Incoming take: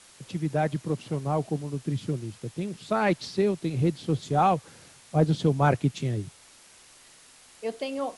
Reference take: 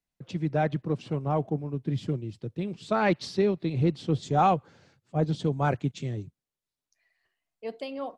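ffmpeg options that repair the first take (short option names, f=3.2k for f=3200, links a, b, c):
-af "afwtdn=0.0028,asetnsamples=n=441:p=0,asendcmd='4.65 volume volume -4dB',volume=0dB"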